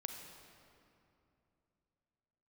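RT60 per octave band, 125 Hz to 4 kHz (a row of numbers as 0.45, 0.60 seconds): 3.5, 3.3, 3.0, 2.7, 2.2, 1.7 seconds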